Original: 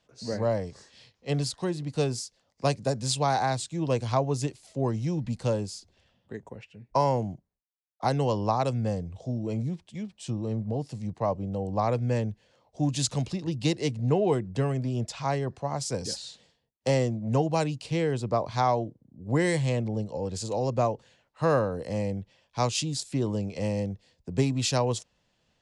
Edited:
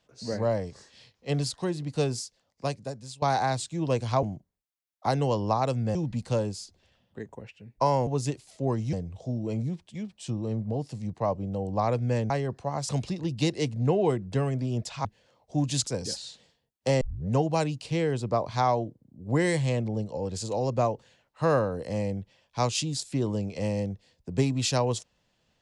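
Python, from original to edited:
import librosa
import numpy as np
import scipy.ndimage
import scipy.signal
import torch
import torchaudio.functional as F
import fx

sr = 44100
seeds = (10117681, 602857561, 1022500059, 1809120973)

y = fx.edit(x, sr, fx.fade_out_to(start_s=2.2, length_s=1.02, floor_db=-21.0),
    fx.swap(start_s=4.23, length_s=0.86, other_s=7.21, other_length_s=1.72),
    fx.swap(start_s=12.3, length_s=0.82, other_s=15.28, other_length_s=0.59),
    fx.tape_start(start_s=17.01, length_s=0.3), tone=tone)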